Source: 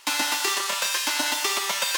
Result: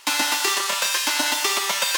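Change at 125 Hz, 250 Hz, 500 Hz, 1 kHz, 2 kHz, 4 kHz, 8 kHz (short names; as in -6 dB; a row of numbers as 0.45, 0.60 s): n/a, +3.0 dB, +3.0 dB, +3.0 dB, +3.0 dB, +3.0 dB, +3.0 dB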